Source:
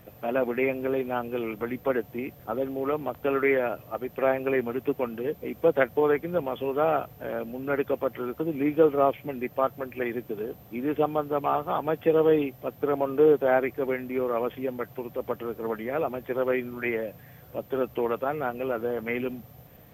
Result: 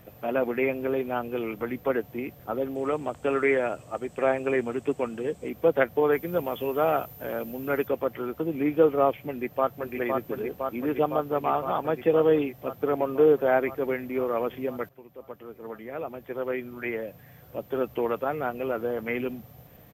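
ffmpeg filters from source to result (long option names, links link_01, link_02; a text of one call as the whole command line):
ffmpeg -i in.wav -filter_complex "[0:a]asettb=1/sr,asplit=3[link_01][link_02][link_03];[link_01]atrim=end=2.754[link_04];[link_02]atrim=start=2.75:end=5.49,asetpts=PTS-STARTPTS,afade=type=in:duration=0.004:curve=qsin,afade=type=out:start_time=2.736:duration=0.004:curve=qsin,lowpass=frequency=8000:width_type=q:width=7.6[link_05];[link_03]atrim=start=5.486[link_06];[link_04][link_05]acrossfade=duration=0.004:curve1=hsin:curve2=qsin[link_07];[link_07][link_06]acrossfade=duration=0.004:curve1=qsin:curve2=hsin,asettb=1/sr,asplit=3[link_08][link_09][link_10];[link_08]atrim=end=6.124[link_11];[link_09]atrim=start=6.12:end=7.88,asetpts=PTS-STARTPTS,afade=type=in:duration=0.004:curve=qsin,afade=type=out:start_time=1.756:duration=0.004:curve=qsin,highshelf=frequency=5900:gain=11[link_12];[link_10]atrim=start=7.876[link_13];[link_11][link_12]acrossfade=duration=0.004:curve1=hsin:curve2=qsin[link_14];[link_14][link_13]acrossfade=duration=0.004:curve1=qsin:curve2=hsin,asplit=2[link_15][link_16];[link_16]afade=type=in:start_time=9.31:duration=0.01,afade=type=out:start_time=9.89:duration=0.01,aecho=0:1:510|1020|1530|2040|2550|3060|3570|4080|4590|5100|5610|6120:0.630957|0.504766|0.403813|0.32305|0.25844|0.206752|0.165402|0.132321|0.105857|0.0846857|0.0677485|0.0541988[link_17];[link_15][link_17]amix=inputs=2:normalize=0,asplit=2[link_18][link_19];[link_18]atrim=end=14.89,asetpts=PTS-STARTPTS,afade=type=out:start_time=14.886:duration=0.004:curve=hsin:silence=0.16788[link_20];[link_19]atrim=start=14.89,asetpts=PTS-STARTPTS,afade=type=in:duration=3.03:silence=0.16788[link_21];[link_20][link_21]concat=n=2:v=0:a=1" out.wav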